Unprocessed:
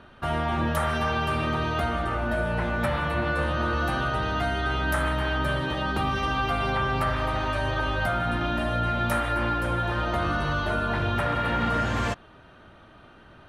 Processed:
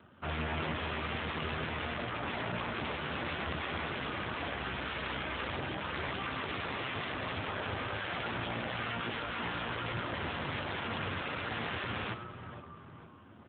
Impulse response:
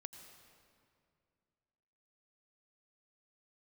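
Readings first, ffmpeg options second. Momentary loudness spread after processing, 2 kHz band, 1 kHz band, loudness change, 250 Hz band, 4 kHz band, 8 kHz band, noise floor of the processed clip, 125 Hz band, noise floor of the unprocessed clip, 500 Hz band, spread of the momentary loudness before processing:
1 LU, −8.5 dB, −11.5 dB, −10.0 dB, −11.0 dB, −5.0 dB, below −35 dB, −52 dBFS, −12.5 dB, −51 dBFS, −11.0 dB, 2 LU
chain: -filter_complex "[0:a]equalizer=frequency=200:width_type=o:width=1.2:gain=3,asplit=5[link_01][link_02][link_03][link_04][link_05];[link_02]adelay=463,afreqshift=-110,volume=-12dB[link_06];[link_03]adelay=926,afreqshift=-220,volume=-19.3dB[link_07];[link_04]adelay=1389,afreqshift=-330,volume=-26.7dB[link_08];[link_05]adelay=1852,afreqshift=-440,volume=-34dB[link_09];[link_01][link_06][link_07][link_08][link_09]amix=inputs=5:normalize=0,aeval=exprs='(mod(10*val(0)+1,2)-1)/10':channel_layout=same,equalizer=frequency=84:width_type=o:width=0.29:gain=11.5,asplit=2[link_10][link_11];[1:a]atrim=start_sample=2205,adelay=104[link_12];[link_11][link_12]afir=irnorm=-1:irlink=0,volume=-7dB[link_13];[link_10][link_13]amix=inputs=2:normalize=0,volume=-7dB" -ar 8000 -c:a libopencore_amrnb -b:a 7400

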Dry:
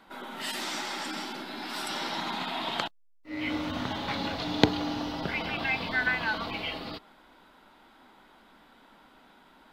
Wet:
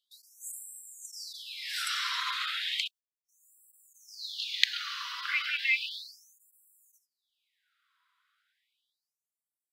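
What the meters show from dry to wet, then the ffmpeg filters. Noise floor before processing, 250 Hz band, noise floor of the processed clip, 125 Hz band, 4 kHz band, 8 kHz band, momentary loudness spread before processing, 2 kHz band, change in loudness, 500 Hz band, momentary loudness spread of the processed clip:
−58 dBFS, below −40 dB, below −85 dBFS, below −40 dB, +1.5 dB, +2.0 dB, 11 LU, −2.5 dB, −0.5 dB, below −40 dB, 16 LU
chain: -af "agate=range=-18dB:threshold=-47dB:ratio=16:detection=peak,afftfilt=real='re*gte(b*sr/1024,960*pow(7500/960,0.5+0.5*sin(2*PI*0.34*pts/sr)))':imag='im*gte(b*sr/1024,960*pow(7500/960,0.5+0.5*sin(2*PI*0.34*pts/sr)))':win_size=1024:overlap=0.75,volume=3.5dB"

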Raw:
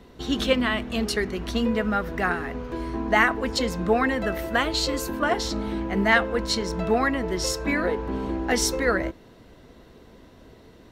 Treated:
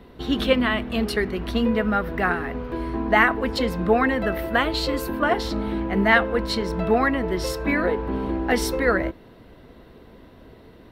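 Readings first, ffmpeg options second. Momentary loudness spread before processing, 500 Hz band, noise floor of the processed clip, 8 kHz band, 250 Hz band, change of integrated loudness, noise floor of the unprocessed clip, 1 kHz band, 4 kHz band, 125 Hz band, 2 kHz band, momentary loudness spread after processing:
9 LU, +2.5 dB, −48 dBFS, −7.0 dB, +2.5 dB, +2.0 dB, −51 dBFS, +2.5 dB, −1.0 dB, +2.5 dB, +2.0 dB, 9 LU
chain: -af "equalizer=frequency=6700:width_type=o:width=0.83:gain=-13,volume=2.5dB"

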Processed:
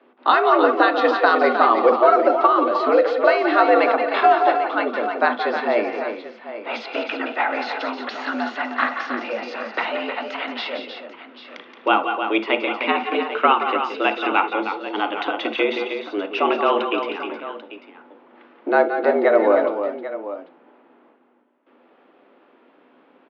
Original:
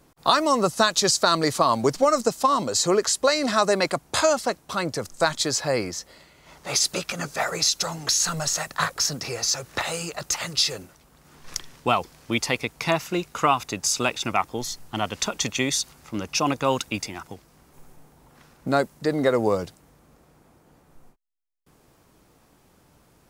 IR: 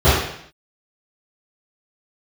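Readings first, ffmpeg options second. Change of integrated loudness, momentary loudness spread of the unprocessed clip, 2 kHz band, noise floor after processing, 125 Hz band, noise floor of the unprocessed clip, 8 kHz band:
+3.5 dB, 10 LU, +6.5 dB, −56 dBFS, below −20 dB, −59 dBFS, below −30 dB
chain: -filter_complex "[0:a]aecho=1:1:173|176|311|791:0.282|0.282|0.398|0.211,asplit=2[link_01][link_02];[1:a]atrim=start_sample=2205,atrim=end_sample=3528[link_03];[link_02][link_03]afir=irnorm=-1:irlink=0,volume=-33dB[link_04];[link_01][link_04]amix=inputs=2:normalize=0,highpass=frequency=160:width_type=q:width=0.5412,highpass=frequency=160:width_type=q:width=1.307,lowpass=frequency=3100:width_type=q:width=0.5176,lowpass=frequency=3100:width_type=q:width=0.7071,lowpass=frequency=3100:width_type=q:width=1.932,afreqshift=96,volume=3.5dB"

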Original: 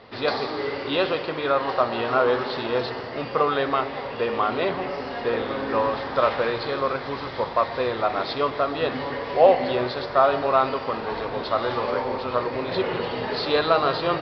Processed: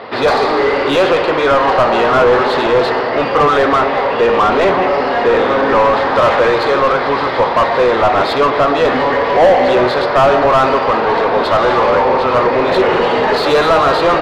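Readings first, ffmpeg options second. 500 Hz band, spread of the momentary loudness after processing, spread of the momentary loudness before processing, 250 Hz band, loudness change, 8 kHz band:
+11.5 dB, 3 LU, 8 LU, +11.5 dB, +12.0 dB, can't be measured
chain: -filter_complex "[0:a]asplit=2[link_01][link_02];[link_02]highpass=frequency=720:poles=1,volume=27dB,asoftclip=type=tanh:threshold=-3.5dB[link_03];[link_01][link_03]amix=inputs=2:normalize=0,lowpass=frequency=1100:poles=1,volume=-6dB,volume=3dB"

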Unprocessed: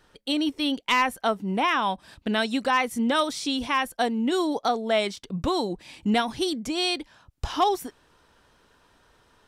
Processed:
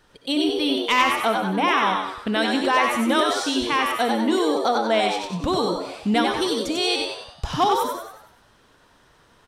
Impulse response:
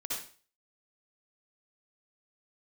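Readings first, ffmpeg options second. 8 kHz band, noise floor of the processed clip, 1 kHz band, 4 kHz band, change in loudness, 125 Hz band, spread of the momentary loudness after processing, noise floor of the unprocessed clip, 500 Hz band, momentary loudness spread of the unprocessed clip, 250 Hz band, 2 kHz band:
+4.5 dB, −57 dBFS, +4.5 dB, +4.0 dB, +4.0 dB, +2.5 dB, 7 LU, −62 dBFS, +4.5 dB, 9 LU, +3.0 dB, +4.0 dB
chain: -filter_complex "[0:a]asplit=7[link_01][link_02][link_03][link_04][link_05][link_06][link_07];[link_02]adelay=95,afreqshift=94,volume=-4dB[link_08];[link_03]adelay=190,afreqshift=188,volume=-10.6dB[link_09];[link_04]adelay=285,afreqshift=282,volume=-17.1dB[link_10];[link_05]adelay=380,afreqshift=376,volume=-23.7dB[link_11];[link_06]adelay=475,afreqshift=470,volume=-30.2dB[link_12];[link_07]adelay=570,afreqshift=564,volume=-36.8dB[link_13];[link_01][link_08][link_09][link_10][link_11][link_12][link_13]amix=inputs=7:normalize=0,asplit=2[link_14][link_15];[1:a]atrim=start_sample=2205,atrim=end_sample=6174[link_16];[link_15][link_16]afir=irnorm=-1:irlink=0,volume=-8dB[link_17];[link_14][link_17]amix=inputs=2:normalize=0"

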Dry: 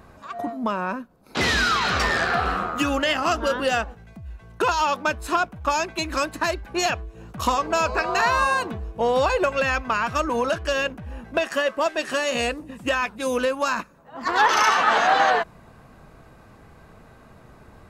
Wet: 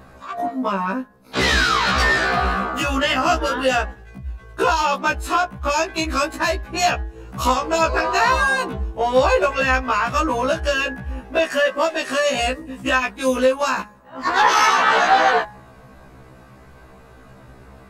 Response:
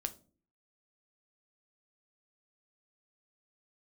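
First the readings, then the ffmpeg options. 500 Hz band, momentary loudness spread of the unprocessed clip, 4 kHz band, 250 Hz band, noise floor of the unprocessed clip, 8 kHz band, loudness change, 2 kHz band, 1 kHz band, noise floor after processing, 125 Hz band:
+3.5 dB, 13 LU, +3.5 dB, +3.5 dB, −50 dBFS, +3.5 dB, +3.5 dB, +4.0 dB, +3.5 dB, −46 dBFS, +5.5 dB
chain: -af "bandreject=frequency=209.3:width_type=h:width=4,bandreject=frequency=418.6:width_type=h:width=4,bandreject=frequency=627.9:width_type=h:width=4,bandreject=frequency=837.2:width_type=h:width=4,bandreject=frequency=1046.5:width_type=h:width=4,bandreject=frequency=1255.8:width_type=h:width=4,bandreject=frequency=1465.1:width_type=h:width=4,bandreject=frequency=1674.4:width_type=h:width=4,bandreject=frequency=1883.7:width_type=h:width=4,acontrast=58,afftfilt=real='re*1.73*eq(mod(b,3),0)':imag='im*1.73*eq(mod(b,3),0)':win_size=2048:overlap=0.75"

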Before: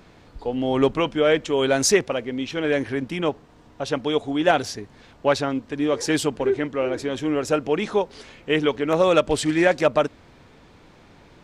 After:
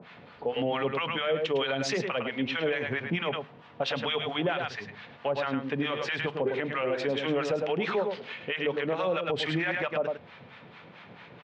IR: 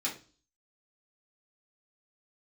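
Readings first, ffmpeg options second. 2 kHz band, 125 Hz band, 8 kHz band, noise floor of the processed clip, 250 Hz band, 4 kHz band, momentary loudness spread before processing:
−3.5 dB, −5.0 dB, below −15 dB, −51 dBFS, −9.5 dB, −3.5 dB, 10 LU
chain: -filter_complex "[0:a]highpass=frequency=120:width=0.5412,highpass=frequency=120:width=1.3066,equalizer=frequency=310:width=2.1:gain=-9.5,acompressor=threshold=-25dB:ratio=3,aemphasis=mode=production:type=75fm,bandreject=frequency=50:width_type=h:width=6,bandreject=frequency=100:width_type=h:width=6,bandreject=frequency=150:width_type=h:width=6,bandreject=frequency=200:width_type=h:width=6,acrossover=split=780[link_01][link_02];[link_01]aeval=exprs='val(0)*(1-1/2+1/2*cos(2*PI*4.5*n/s))':channel_layout=same[link_03];[link_02]aeval=exprs='val(0)*(1-1/2-1/2*cos(2*PI*4.5*n/s))':channel_layout=same[link_04];[link_03][link_04]amix=inputs=2:normalize=0,lowpass=frequency=3000:width=0.5412,lowpass=frequency=3000:width=1.3066,asplit=2[link_05][link_06];[link_06]adelay=105,volume=-8dB,highshelf=frequency=4000:gain=-2.36[link_07];[link_05][link_07]amix=inputs=2:normalize=0,asplit=2[link_08][link_09];[1:a]atrim=start_sample=2205,asetrate=57330,aresample=44100[link_10];[link_09][link_10]afir=irnorm=-1:irlink=0,volume=-18.5dB[link_11];[link_08][link_11]amix=inputs=2:normalize=0,alimiter=level_in=3.5dB:limit=-24dB:level=0:latency=1:release=66,volume=-3.5dB,volume=8dB"

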